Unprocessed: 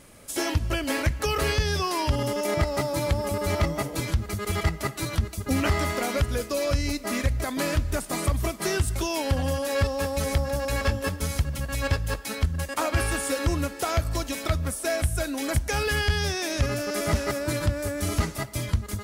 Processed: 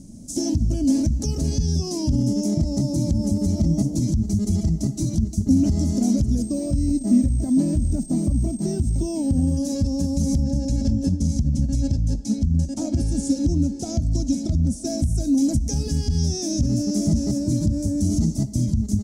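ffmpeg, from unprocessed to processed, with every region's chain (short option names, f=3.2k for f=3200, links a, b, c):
-filter_complex "[0:a]asettb=1/sr,asplit=3[a][b][c];[a]atrim=end=6.424[d];[b]atrim=start=6.42:end=9.57,asetpts=PTS-STARTPTS,afade=t=in:d=0.004:c=qsin,afade=t=out:st=3.146:d=0.004:c=qsin,bass=f=250:g=-2,treble=f=4k:g=-14,acrusher=bits=8:dc=4:mix=0:aa=0.000001,aeval=exprs='val(0)+0.00794*sin(2*PI*8400*n/s)':c=same[e];[c]atrim=start=9.566[f];[d][e]acrossfade=d=0.004:c1=hsin:c2=qsin[g];[g][f]acrossfade=d=0.004:c1=qsin:c2=hsin,asettb=1/sr,asplit=3[h][i][j];[h]atrim=end=10.434[k];[i]atrim=start=10.43:end=14.87,asetpts=PTS-STARTPTS,afade=t=in:d=0.004:c=qsin,afade=t=out:st=4.436:d=0.004:c=qsin,adynamicsmooth=sensitivity=7:basefreq=6.9k,bandreject=f=1.1k:w=9.6[l];[j]atrim=start=14.866[m];[k][l]acrossfade=d=0.004:c1=hsin:c2=qsin[n];[n][m]acrossfade=d=0.004:c1=qsin:c2=hsin,lowshelf=f=420:g=10.5,alimiter=limit=-14dB:level=0:latency=1:release=54,firequalizer=gain_entry='entry(110,0);entry(230,11);entry(450,-13);entry(670,-7);entry(1200,-27);entry(2300,-23);entry(5900,8);entry(13000,-12)':delay=0.05:min_phase=1"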